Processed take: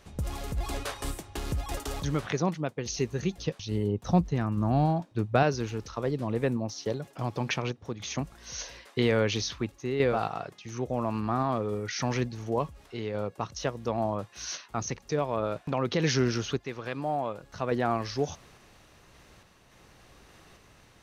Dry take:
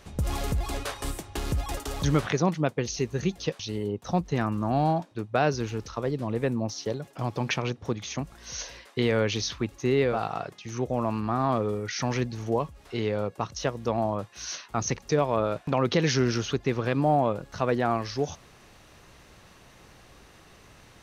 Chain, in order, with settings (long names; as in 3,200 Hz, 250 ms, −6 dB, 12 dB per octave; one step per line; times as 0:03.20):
0:03.38–0:05.43: low-shelf EQ 200 Hz +9.5 dB
sample-and-hold tremolo
0:16.59–0:17.44: low-shelf EQ 480 Hz −8 dB